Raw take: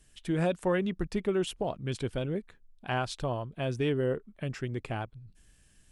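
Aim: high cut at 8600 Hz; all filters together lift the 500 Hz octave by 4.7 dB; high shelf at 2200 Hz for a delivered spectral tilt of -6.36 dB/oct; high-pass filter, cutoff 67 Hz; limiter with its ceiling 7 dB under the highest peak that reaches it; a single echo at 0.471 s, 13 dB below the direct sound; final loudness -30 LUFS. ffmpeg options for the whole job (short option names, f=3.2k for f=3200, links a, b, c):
-af "highpass=67,lowpass=8.6k,equalizer=f=500:t=o:g=6,highshelf=f=2.2k:g=-3,alimiter=limit=-21dB:level=0:latency=1,aecho=1:1:471:0.224,volume=2dB"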